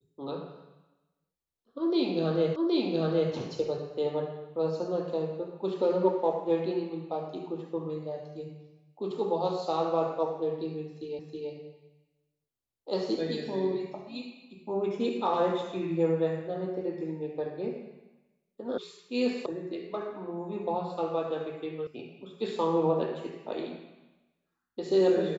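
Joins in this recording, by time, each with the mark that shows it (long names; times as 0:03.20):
0:02.56: the same again, the last 0.77 s
0:11.19: the same again, the last 0.32 s
0:18.78: cut off before it has died away
0:19.46: cut off before it has died away
0:21.87: cut off before it has died away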